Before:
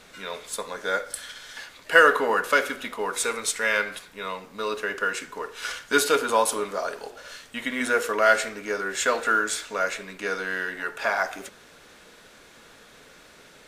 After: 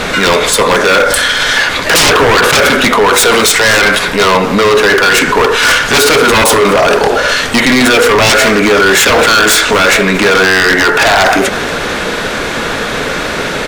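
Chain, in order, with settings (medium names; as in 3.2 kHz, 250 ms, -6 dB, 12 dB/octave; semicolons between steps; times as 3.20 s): treble shelf 5.1 kHz -11.5 dB; in parallel at +2 dB: compressor with a negative ratio -34 dBFS, ratio -1; on the sum: wavefolder -21 dBFS; feedback delay 230 ms, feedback 41%, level -23.5 dB; loudness maximiser +26.5 dB; trim -1 dB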